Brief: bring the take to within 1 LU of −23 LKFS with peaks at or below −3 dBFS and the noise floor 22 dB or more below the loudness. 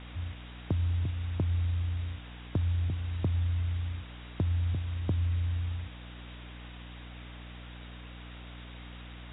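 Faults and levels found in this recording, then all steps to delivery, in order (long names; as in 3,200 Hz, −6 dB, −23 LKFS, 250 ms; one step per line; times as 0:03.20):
mains hum 60 Hz; hum harmonics up to 300 Hz; level of the hum −43 dBFS; background noise floor −46 dBFS; target noise floor −55 dBFS; integrated loudness −32.5 LKFS; sample peak −18.5 dBFS; target loudness −23.0 LKFS
→ hum removal 60 Hz, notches 5
broadband denoise 9 dB, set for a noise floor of −46 dBFS
level +9.5 dB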